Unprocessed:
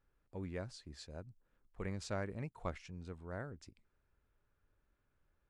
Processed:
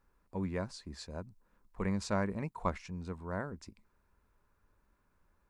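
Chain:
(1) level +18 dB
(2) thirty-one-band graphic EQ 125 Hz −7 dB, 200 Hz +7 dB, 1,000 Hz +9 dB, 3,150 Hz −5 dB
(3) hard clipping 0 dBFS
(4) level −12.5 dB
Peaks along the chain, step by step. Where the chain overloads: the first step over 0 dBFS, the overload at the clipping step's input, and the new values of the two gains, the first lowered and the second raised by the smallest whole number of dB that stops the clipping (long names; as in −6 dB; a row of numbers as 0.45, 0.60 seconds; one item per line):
−8.0, −5.5, −5.5, −18.0 dBFS
no step passes full scale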